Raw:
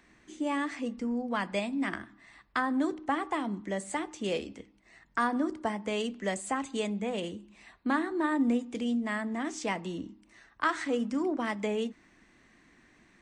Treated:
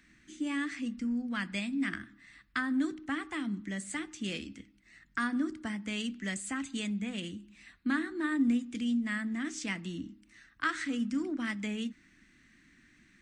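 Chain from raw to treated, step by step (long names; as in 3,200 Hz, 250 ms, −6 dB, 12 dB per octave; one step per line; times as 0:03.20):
flat-topped bell 650 Hz −15 dB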